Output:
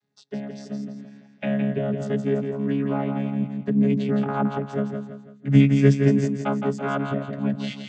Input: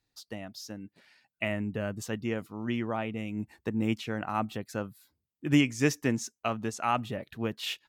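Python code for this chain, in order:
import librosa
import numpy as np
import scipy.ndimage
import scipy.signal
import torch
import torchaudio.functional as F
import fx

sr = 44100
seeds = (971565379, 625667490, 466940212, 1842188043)

y = fx.chord_vocoder(x, sr, chord='bare fifth', root=49)
y = fx.echo_feedback(y, sr, ms=166, feedback_pct=41, wet_db=-6)
y = F.gain(torch.from_numpy(y), 8.5).numpy()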